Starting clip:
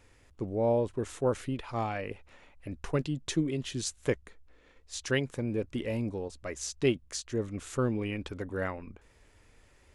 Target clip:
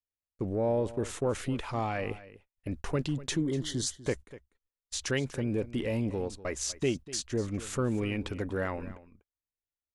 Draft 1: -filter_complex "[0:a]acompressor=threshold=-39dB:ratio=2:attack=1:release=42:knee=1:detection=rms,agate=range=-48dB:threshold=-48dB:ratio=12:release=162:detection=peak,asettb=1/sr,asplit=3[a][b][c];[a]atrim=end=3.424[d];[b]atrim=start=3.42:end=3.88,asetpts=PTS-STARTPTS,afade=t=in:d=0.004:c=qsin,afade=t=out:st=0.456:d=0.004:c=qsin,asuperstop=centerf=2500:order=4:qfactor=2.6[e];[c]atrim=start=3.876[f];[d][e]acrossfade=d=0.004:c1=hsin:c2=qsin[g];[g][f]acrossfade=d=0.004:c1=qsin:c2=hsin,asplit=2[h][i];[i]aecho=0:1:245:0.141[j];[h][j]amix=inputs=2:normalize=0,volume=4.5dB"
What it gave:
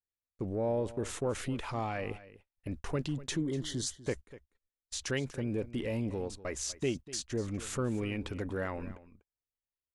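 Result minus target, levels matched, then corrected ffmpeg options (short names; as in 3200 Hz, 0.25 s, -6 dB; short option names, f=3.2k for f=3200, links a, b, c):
compressor: peak gain reduction +3.5 dB
-filter_complex "[0:a]acompressor=threshold=-32.5dB:ratio=2:attack=1:release=42:knee=1:detection=rms,agate=range=-48dB:threshold=-48dB:ratio=12:release=162:detection=peak,asettb=1/sr,asplit=3[a][b][c];[a]atrim=end=3.424[d];[b]atrim=start=3.42:end=3.88,asetpts=PTS-STARTPTS,afade=t=in:d=0.004:c=qsin,afade=t=out:st=0.456:d=0.004:c=qsin,asuperstop=centerf=2500:order=4:qfactor=2.6[e];[c]atrim=start=3.876[f];[d][e]acrossfade=d=0.004:c1=hsin:c2=qsin[g];[g][f]acrossfade=d=0.004:c1=qsin:c2=hsin,asplit=2[h][i];[i]aecho=0:1:245:0.141[j];[h][j]amix=inputs=2:normalize=0,volume=4.5dB"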